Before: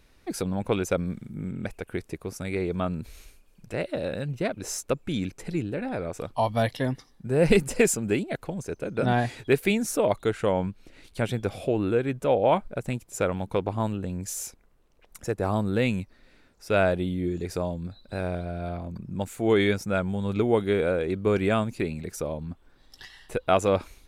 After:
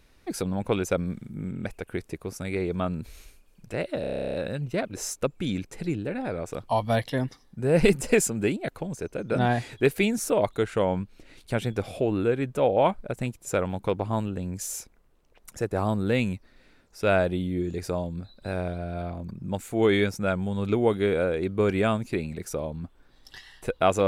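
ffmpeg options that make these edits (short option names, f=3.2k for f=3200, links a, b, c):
-filter_complex "[0:a]asplit=12[a][b][c][d][e][f][g][h][i][j][k][l];[a]atrim=end=4.042[m];[b]atrim=start=4.008:end=4.042[n];[c]atrim=start=4.008:end=4.042[o];[d]atrim=start=4.008:end=4.042[p];[e]atrim=start=4.008:end=4.042[q];[f]atrim=start=4.008:end=4.042[r];[g]atrim=start=4.008:end=4.042[s];[h]atrim=start=4.008:end=4.042[t];[i]atrim=start=4.008:end=4.042[u];[j]atrim=start=4.008:end=4.042[v];[k]atrim=start=4.008:end=4.042[w];[l]atrim=start=4.008[x];[m][n]acrossfade=d=0.004:c1=hsin:c2=hsin[y];[y][o]acrossfade=d=0.004:c1=hsin:c2=hsin[z];[z][p]acrossfade=d=0.004:c1=hsin:c2=hsin[aa];[aa][q]acrossfade=d=0.004:c1=hsin:c2=hsin[ab];[ab][r]acrossfade=d=0.004:c1=hsin:c2=hsin[ac];[ac][s]acrossfade=d=0.004:c1=hsin:c2=hsin[ad];[ad][t]acrossfade=d=0.004:c1=hsin:c2=hsin[ae];[ae][u]acrossfade=d=0.004:c1=hsin:c2=hsin[af];[af][v]acrossfade=d=0.004:c1=hsin:c2=hsin[ag];[ag][w]acrossfade=d=0.004:c1=hsin:c2=hsin[ah];[ah][x]acrossfade=d=0.004:c1=hsin:c2=hsin"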